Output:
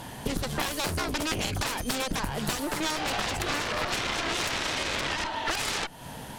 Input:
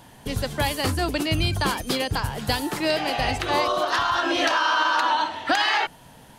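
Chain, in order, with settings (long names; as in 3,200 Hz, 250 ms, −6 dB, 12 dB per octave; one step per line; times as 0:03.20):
harmonic generator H 6 −8 dB, 7 −6 dB, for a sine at −8.5 dBFS
downward compressor 6 to 1, threshold −27 dBFS, peak gain reduction 14.5 dB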